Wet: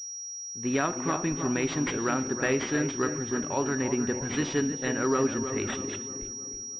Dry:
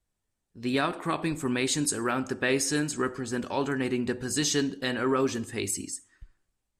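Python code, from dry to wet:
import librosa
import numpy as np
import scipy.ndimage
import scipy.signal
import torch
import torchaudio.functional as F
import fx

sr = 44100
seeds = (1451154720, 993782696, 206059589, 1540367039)

y = fx.echo_filtered(x, sr, ms=316, feedback_pct=53, hz=1800.0, wet_db=-8.0)
y = fx.pwm(y, sr, carrier_hz=5700.0)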